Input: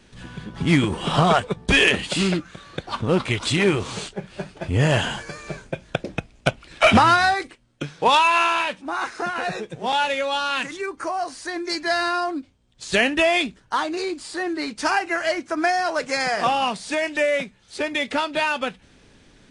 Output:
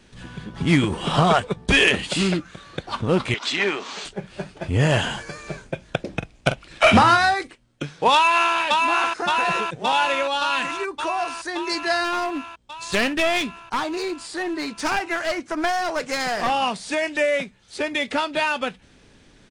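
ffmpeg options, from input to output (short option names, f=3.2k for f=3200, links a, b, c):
-filter_complex "[0:a]asettb=1/sr,asplit=3[a][b][c];[a]atrim=end=3.344[d];[b]atrim=start=3.34:end=4.05,asetpts=PTS-STARTPTS,afade=t=in:d=0.004:c=qsin,afade=t=out:st=0.706:d=0.004:c=qsin,highpass=f=270:w=0.5412,highpass=f=270:w=1.3066,equalizer=f=330:t=q:w=4:g=-8,equalizer=f=500:t=q:w=4:g=-8,equalizer=f=1.8k:t=q:w=4:g=3,lowpass=f=6.6k:w=0.5412,lowpass=f=6.6k:w=1.3066[e];[c]atrim=start=4.046[f];[d][e]acrossfade=d=0.004:c1=hsin:c2=qsin[g];[g][f]acrossfade=d=0.004:c1=qsin:c2=hsin,asettb=1/sr,asplit=3[h][i][j];[h]atrim=end=6.084[k];[i]atrim=start=6.08:end=7.18,asetpts=PTS-STARTPTS,afade=t=in:d=0.004:c=qsin,afade=t=out:st=1.096:d=0.004:c=qsin,asplit=2[l][m];[m]adelay=44,volume=-10dB[n];[l][n]amix=inputs=2:normalize=0,atrim=end_sample=48510[o];[j]atrim=start=7.176[p];[k][o]acrossfade=d=0.004:c1=hsin:c2=qsin[q];[q][p]acrossfade=d=0.004:c1=qsin:c2=hsin,asplit=2[r][s];[s]afade=t=in:st=8.13:d=0.01,afade=t=out:st=8.56:d=0.01,aecho=0:1:570|1140|1710|2280|2850|3420|3990|4560|5130|5700|6270|6840:0.707946|0.530959|0.39822|0.298665|0.223998|0.167999|0.125999|0.0944994|0.0708745|0.0531559|0.0398669|0.0299002[t];[r][t]amix=inputs=2:normalize=0,asettb=1/sr,asplit=3[u][v][w];[u]atrim=end=12.044[x];[v]atrim=start=12.04:end=16.5,asetpts=PTS-STARTPTS,afade=t=in:d=0.004:c=qsin,afade=t=out:st=4.456:d=0.004:c=qsin,aeval=exprs='clip(val(0),-1,0.0631)':c=same[y];[w]atrim=start=16.496[z];[x][y]acrossfade=d=0.004:c1=hsin:c2=qsin[aa];[aa][z]acrossfade=d=0.004:c1=qsin:c2=hsin"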